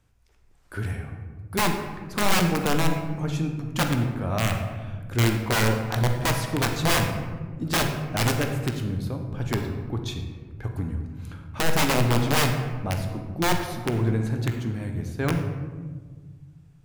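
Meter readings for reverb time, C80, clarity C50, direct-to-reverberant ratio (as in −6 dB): 1.5 s, 7.0 dB, 5.5 dB, 3.5 dB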